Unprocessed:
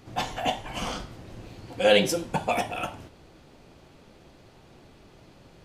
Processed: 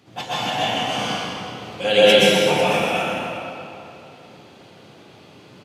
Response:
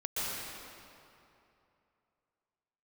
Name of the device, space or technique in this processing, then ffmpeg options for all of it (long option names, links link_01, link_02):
PA in a hall: -filter_complex "[0:a]highpass=frequency=110:width=0.5412,highpass=frequency=110:width=1.3066,equalizer=frequency=3200:width_type=o:width=1:gain=5,aecho=1:1:127:0.473[link_01];[1:a]atrim=start_sample=2205[link_02];[link_01][link_02]afir=irnorm=-1:irlink=0"